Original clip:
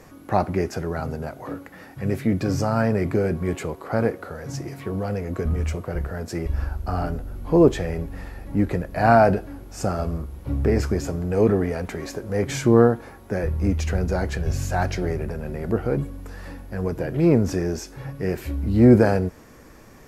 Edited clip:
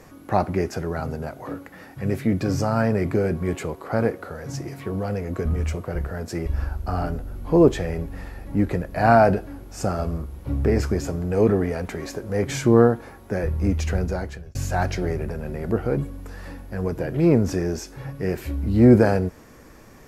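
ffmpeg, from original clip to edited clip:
-filter_complex "[0:a]asplit=2[a][b];[a]atrim=end=14.55,asetpts=PTS-STARTPTS,afade=t=out:st=13.98:d=0.57[c];[b]atrim=start=14.55,asetpts=PTS-STARTPTS,afade=t=in:d=0.004:c=hsin[d];[c][d]concat=n=2:v=0:a=1"

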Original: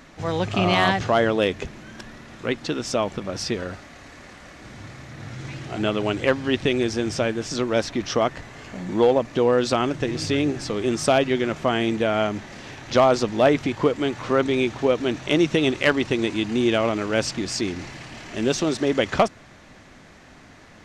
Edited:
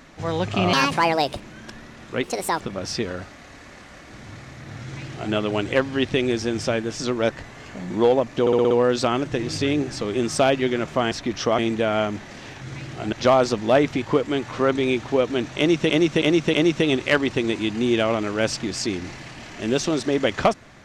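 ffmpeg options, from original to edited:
-filter_complex "[0:a]asplit=18[a][b][c][d][e][f][g][h][i][j][k][l][m][n][o][p][q][r];[a]atrim=end=0.734[s];[b]atrim=start=0.73:end=1.71,asetpts=PTS-STARTPTS,asetrate=64386,aresample=44100,atrim=end_sample=29601,asetpts=PTS-STARTPTS[t];[c]atrim=start=1.706:end=2.544[u];[d]atrim=start=2.54:end=3.12,asetpts=PTS-STARTPTS,asetrate=68355,aresample=44100[v];[e]atrim=start=3.116:end=7.812[w];[f]atrim=start=8.278:end=9.452[x];[g]atrim=start=9.388:end=9.452[y];[h]atrim=start=9.388:end=9.452[z];[i]atrim=start=9.388:end=9.452[aa];[j]atrim=start=9.388:end=9.452[ab];[k]atrim=start=9.388:end=11.802[ac];[l]atrim=start=7.808:end=8.282[ad];[m]atrim=start=11.798:end=12.832[ae];[n]atrim=start=5.338:end=5.852[af];[o]atrim=start=12.828:end=15.602[ag];[p]atrim=start=15.278:end=15.602[ah];[q]atrim=start=15.278:end=15.602[ai];[r]atrim=start=15.278[aj];[s][t]acrossfade=d=0.004:c1=hsin:c2=hsin[ak];[ak][u]acrossfade=d=0.004:c1=hsin:c2=hsin[al];[al][v]acrossfade=d=0.004:c1=hsin:c2=hsin[am];[am][w]acrossfade=d=0.004:c1=hsin:c2=hsin[an];[an][x]acrossfade=d=0.004:c1=hsin:c2=hsin[ao];[ao][y]acrossfade=d=0.004:c1=hsin:c2=hsin[ap];[ap][z]acrossfade=d=0.004:c1=hsin:c2=hsin[aq];[aq][aa]acrossfade=d=0.004:c1=hsin:c2=hsin[ar];[ar][ab]acrossfade=d=0.004:c1=hsin:c2=hsin[as];[as][ac]acrossfade=d=0.004:c1=hsin:c2=hsin[at];[at][ad]acrossfade=d=0.004:c1=hsin:c2=hsin[au];[au][ae]acrossfade=d=0.004:c1=hsin:c2=hsin[av];[av][af]acrossfade=d=0.004:c1=hsin:c2=hsin[aw];[aw][ag]acrossfade=d=0.004:c1=hsin:c2=hsin[ax];[ax][ah]acrossfade=d=0.004:c1=hsin:c2=hsin[ay];[ay][ai]acrossfade=d=0.004:c1=hsin:c2=hsin[az];[az][aj]acrossfade=d=0.004:c1=hsin:c2=hsin"

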